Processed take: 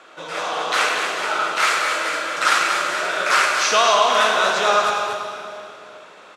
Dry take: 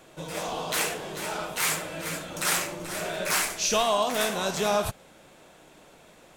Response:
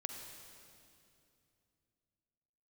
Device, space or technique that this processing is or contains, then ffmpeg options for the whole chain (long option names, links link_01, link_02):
station announcement: -filter_complex "[0:a]asettb=1/sr,asplit=3[link_01][link_02][link_03];[link_01]atrim=end=1.714[link_04];[link_02]atrim=start=1.71:end=2.38,asetpts=PTS-STARTPTS,afade=type=in:duration=0.004:curve=qsin,afade=type=out:start_time=0.666:duration=0.004:curve=qsin,highpass=250[link_05];[link_03]atrim=start=2.376[link_06];[link_04][link_05]acrossfade=duration=0.004:curve1=hsin:curve2=qsin[link_07];[link_07][link_06]acrossfade=duration=0.004:curve1=qsin:curve2=hsin,highpass=380,lowpass=3600,equalizer=frequency=1300:width_type=o:width=0.52:gain=10.5,highshelf=frequency=3300:gain=10,aecho=1:1:105|236.2:0.282|0.447[link_08];[1:a]atrim=start_sample=2205[link_09];[link_08][link_09]afir=irnorm=-1:irlink=0,volume=7dB"